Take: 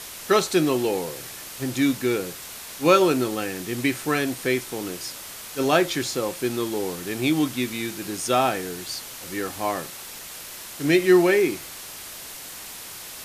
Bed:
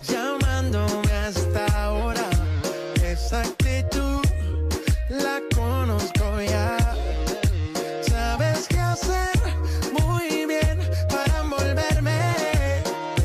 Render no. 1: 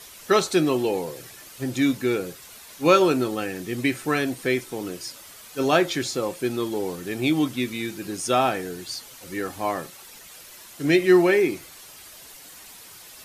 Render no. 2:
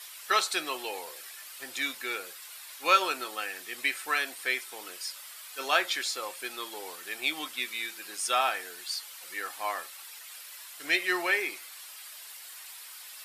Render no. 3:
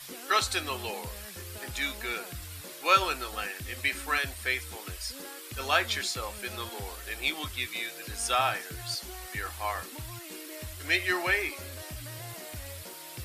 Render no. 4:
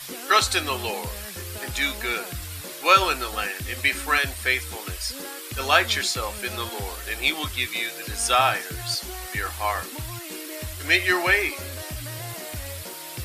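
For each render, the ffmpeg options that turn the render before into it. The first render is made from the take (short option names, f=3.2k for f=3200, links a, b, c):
-af "afftdn=nr=9:nf=-39"
-af "highpass=1.1k,equalizer=f=6.3k:w=4.2:g=-5.5"
-filter_complex "[1:a]volume=-21.5dB[a];[0:a][a]amix=inputs=2:normalize=0"
-af "volume=7dB,alimiter=limit=-2dB:level=0:latency=1"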